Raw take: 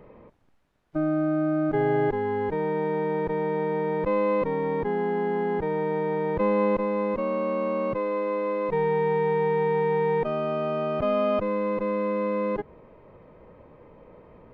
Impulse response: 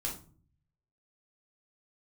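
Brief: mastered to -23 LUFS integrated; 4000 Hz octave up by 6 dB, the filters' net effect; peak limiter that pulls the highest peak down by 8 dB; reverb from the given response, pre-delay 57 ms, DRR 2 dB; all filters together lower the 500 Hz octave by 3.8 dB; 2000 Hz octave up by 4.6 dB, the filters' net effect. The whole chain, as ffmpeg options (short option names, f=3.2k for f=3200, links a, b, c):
-filter_complex "[0:a]equalizer=f=500:t=o:g=-4.5,equalizer=f=2k:t=o:g=4,equalizer=f=4k:t=o:g=6.5,alimiter=limit=-23dB:level=0:latency=1,asplit=2[a][b];[1:a]atrim=start_sample=2205,adelay=57[c];[b][c]afir=irnorm=-1:irlink=0,volume=-4dB[d];[a][d]amix=inputs=2:normalize=0,volume=4.5dB"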